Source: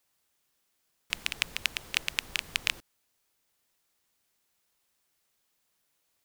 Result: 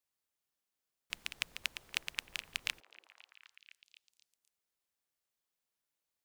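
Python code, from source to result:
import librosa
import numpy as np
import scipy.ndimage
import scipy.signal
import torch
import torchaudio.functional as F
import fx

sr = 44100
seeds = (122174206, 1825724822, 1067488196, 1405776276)

y = fx.echo_stepped(x, sr, ms=254, hz=500.0, octaves=0.7, feedback_pct=70, wet_db=-5.5)
y = fx.upward_expand(y, sr, threshold_db=-39.0, expansion=1.5)
y = y * librosa.db_to_amplitude(-6.5)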